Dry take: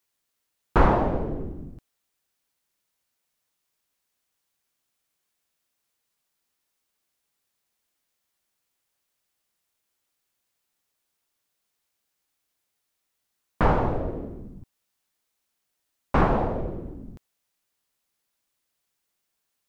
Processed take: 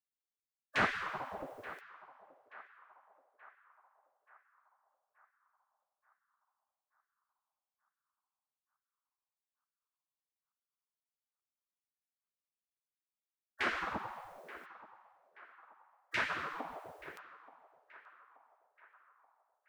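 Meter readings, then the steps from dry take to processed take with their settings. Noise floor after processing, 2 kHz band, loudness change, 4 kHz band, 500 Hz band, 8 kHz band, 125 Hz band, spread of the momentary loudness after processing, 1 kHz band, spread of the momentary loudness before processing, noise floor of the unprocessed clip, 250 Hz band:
under -85 dBFS, -0.5 dB, -13.5 dB, +2.5 dB, -18.0 dB, no reading, -25.5 dB, 24 LU, -12.5 dB, 19 LU, -79 dBFS, -20.0 dB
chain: spectral gate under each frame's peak -20 dB weak; in parallel at +0.5 dB: compression, threshold -46 dBFS, peak gain reduction 18 dB; on the sum: band-passed feedback delay 879 ms, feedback 57%, band-pass 1.1 kHz, level -15 dB

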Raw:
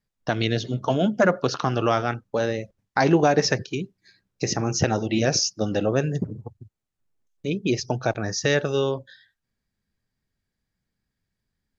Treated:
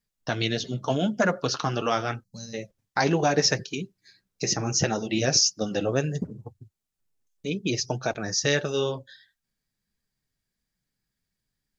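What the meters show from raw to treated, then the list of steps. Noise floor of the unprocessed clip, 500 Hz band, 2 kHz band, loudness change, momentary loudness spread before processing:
-83 dBFS, -4.0 dB, -2.0 dB, -2.0 dB, 12 LU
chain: time-frequency box 2.23–2.54 s, 230–3900 Hz -25 dB; treble shelf 3.3 kHz +9 dB; flange 1.6 Hz, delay 4 ms, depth 3.7 ms, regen -44%

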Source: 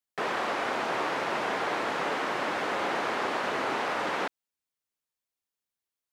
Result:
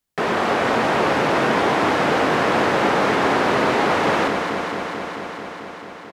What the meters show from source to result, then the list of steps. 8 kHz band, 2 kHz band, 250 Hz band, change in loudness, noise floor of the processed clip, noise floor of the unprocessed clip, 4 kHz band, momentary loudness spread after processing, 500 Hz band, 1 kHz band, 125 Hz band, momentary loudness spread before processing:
+10.0 dB, +10.0 dB, +15.5 dB, +10.5 dB, -37 dBFS, under -85 dBFS, +9.5 dB, 13 LU, +13.0 dB, +10.5 dB, +19.5 dB, 1 LU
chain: bass shelf 260 Hz +12 dB; in parallel at -2.5 dB: peak limiter -25 dBFS, peak gain reduction 10 dB; on the sum: doubling 22 ms -13 dB; echo whose repeats swap between lows and highs 110 ms, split 860 Hz, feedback 89%, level -4.5 dB; trim +4 dB

